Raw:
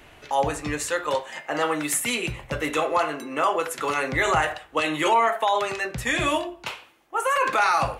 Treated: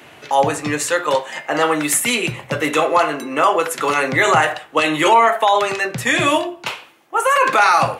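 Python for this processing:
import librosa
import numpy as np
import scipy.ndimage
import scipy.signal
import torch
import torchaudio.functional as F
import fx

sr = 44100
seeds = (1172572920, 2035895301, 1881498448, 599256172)

y = scipy.signal.sosfilt(scipy.signal.butter(4, 110.0, 'highpass', fs=sr, output='sos'), x)
y = F.gain(torch.from_numpy(y), 7.5).numpy()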